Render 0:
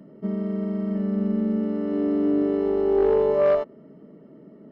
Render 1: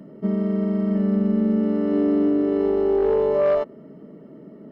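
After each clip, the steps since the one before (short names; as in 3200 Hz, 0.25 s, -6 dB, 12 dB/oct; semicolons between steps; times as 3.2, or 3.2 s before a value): limiter -17 dBFS, peak gain reduction 6 dB; gain +4.5 dB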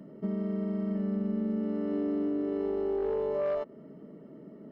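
compressor 2:1, threshold -26 dBFS, peak gain reduction 5.5 dB; gain -5.5 dB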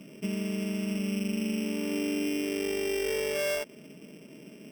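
sample sorter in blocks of 16 samples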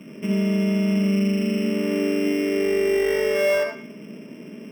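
reverb RT60 0.50 s, pre-delay 55 ms, DRR 1 dB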